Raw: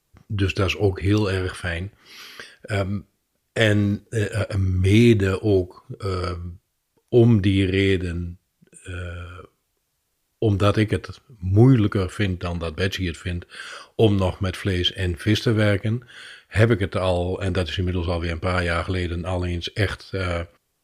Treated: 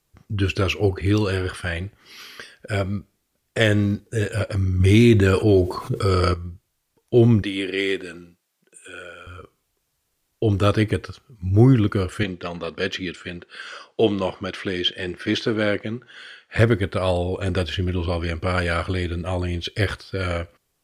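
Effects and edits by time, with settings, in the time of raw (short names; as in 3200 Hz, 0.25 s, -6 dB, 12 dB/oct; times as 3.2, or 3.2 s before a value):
4.8–6.34 fast leveller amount 50%
7.42–9.27 HPF 380 Hz
12.23–16.59 BPF 200–6200 Hz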